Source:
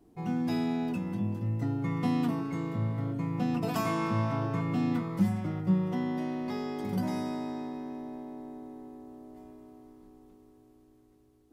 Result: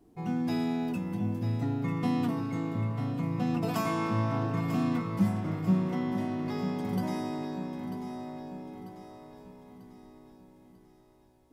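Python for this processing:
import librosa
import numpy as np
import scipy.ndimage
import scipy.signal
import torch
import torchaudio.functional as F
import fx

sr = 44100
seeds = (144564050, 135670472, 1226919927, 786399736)

y = fx.high_shelf(x, sr, hz=10000.0, db=6.5, at=(0.59, 1.53))
y = fx.echo_feedback(y, sr, ms=943, feedback_pct=47, wet_db=-10.0)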